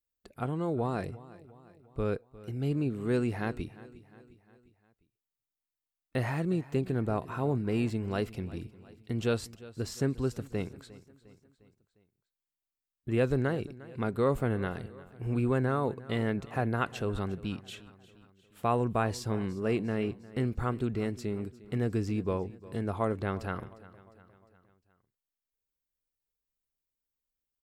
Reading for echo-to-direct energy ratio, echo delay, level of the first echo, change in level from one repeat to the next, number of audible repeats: −17.5 dB, 354 ms, −19.0 dB, −5.5 dB, 3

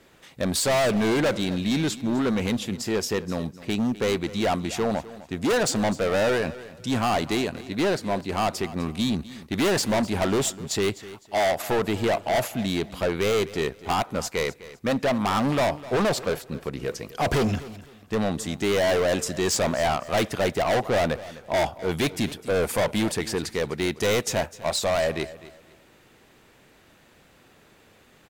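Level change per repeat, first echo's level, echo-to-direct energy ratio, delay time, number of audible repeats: −11.5 dB, −17.0 dB, −16.5 dB, 254 ms, 2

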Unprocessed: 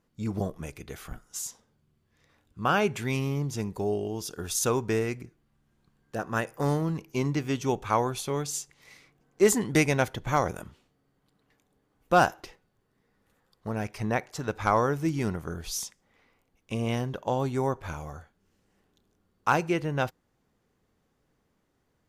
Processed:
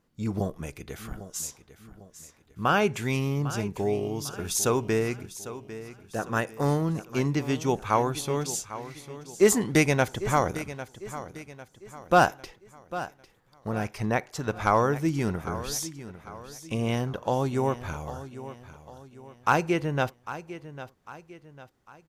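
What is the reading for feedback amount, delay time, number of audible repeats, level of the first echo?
42%, 800 ms, 3, −14.0 dB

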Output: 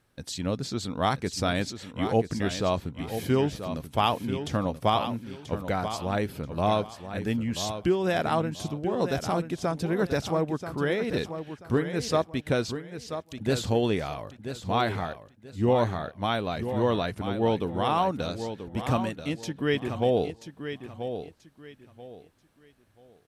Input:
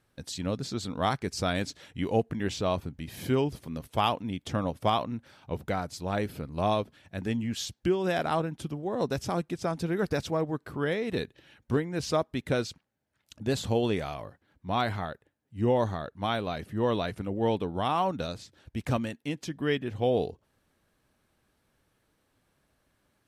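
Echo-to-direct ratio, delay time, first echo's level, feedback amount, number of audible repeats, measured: −9.0 dB, 984 ms, −9.5 dB, 26%, 3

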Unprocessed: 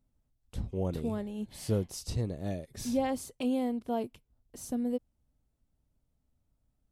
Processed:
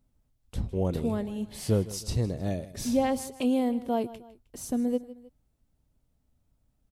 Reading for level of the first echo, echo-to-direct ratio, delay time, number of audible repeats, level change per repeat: −17.0 dB, −16.0 dB, 156 ms, 2, −7.0 dB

